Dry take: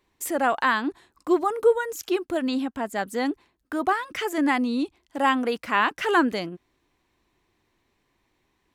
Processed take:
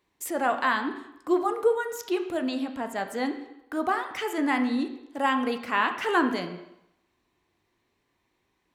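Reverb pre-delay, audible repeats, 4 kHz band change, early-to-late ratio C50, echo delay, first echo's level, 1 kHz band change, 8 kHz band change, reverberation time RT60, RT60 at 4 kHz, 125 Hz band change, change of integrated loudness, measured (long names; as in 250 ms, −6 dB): 10 ms, no echo audible, −3.0 dB, 9.5 dB, no echo audible, no echo audible, −2.5 dB, −3.5 dB, 0.85 s, 0.75 s, −2.5 dB, −2.5 dB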